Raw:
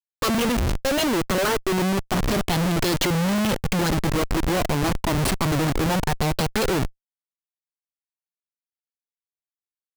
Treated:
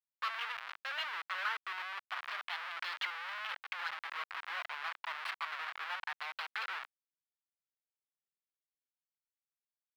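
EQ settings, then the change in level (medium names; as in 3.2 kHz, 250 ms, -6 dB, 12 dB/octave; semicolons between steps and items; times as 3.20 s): high-pass 1.2 kHz 24 dB/octave; distance through air 390 m; -4.5 dB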